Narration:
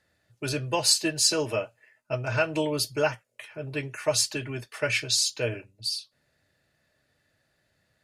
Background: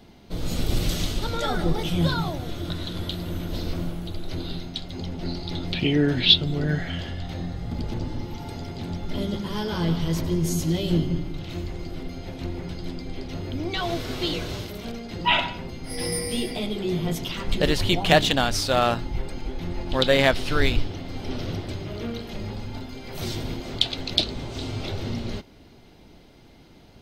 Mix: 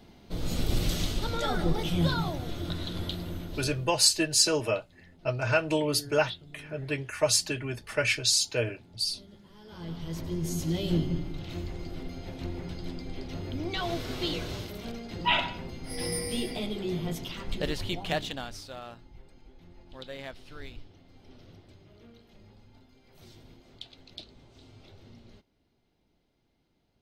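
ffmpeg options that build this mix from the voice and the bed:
-filter_complex "[0:a]adelay=3150,volume=1[s0];[1:a]volume=6.68,afade=t=out:st=3.06:d=0.89:silence=0.0891251,afade=t=in:st=9.6:d=1.26:silence=0.1,afade=t=out:st=16.55:d=2.26:silence=0.125893[s1];[s0][s1]amix=inputs=2:normalize=0"

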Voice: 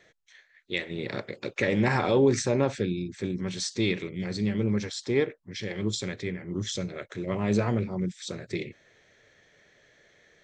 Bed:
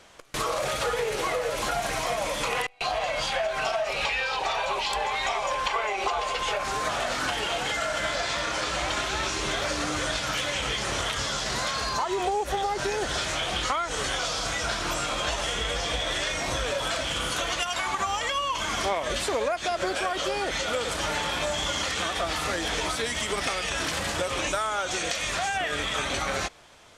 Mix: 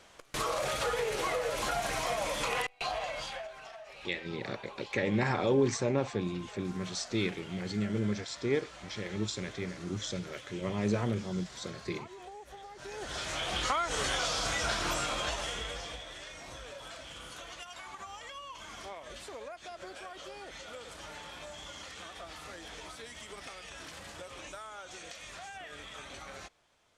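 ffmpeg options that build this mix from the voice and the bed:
-filter_complex "[0:a]adelay=3350,volume=0.562[s0];[1:a]volume=4.73,afade=t=out:st=2.67:d=0.93:silence=0.149624,afade=t=in:st=12.76:d=1.02:silence=0.125893,afade=t=out:st=14.85:d=1.22:silence=0.188365[s1];[s0][s1]amix=inputs=2:normalize=0"

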